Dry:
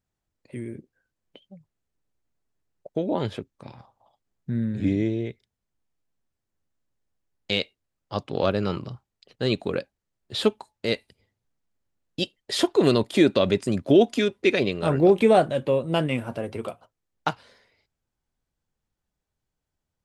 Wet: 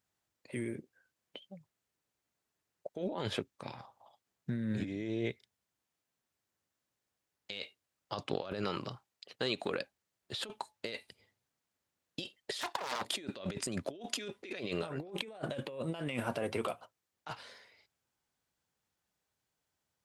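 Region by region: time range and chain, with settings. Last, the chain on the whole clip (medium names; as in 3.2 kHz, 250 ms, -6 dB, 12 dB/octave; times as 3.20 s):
8.64–9.77 s: bass shelf 160 Hz -7 dB + compression 5:1, threshold -28 dBFS
12.61–13.05 s: comb filter that takes the minimum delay 1.1 ms + high-pass 380 Hz 6 dB/octave + loudspeaker Doppler distortion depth 0.77 ms
whole clip: high-pass 79 Hz; bass shelf 470 Hz -9.5 dB; compressor with a negative ratio -36 dBFS, ratio -1; trim -3 dB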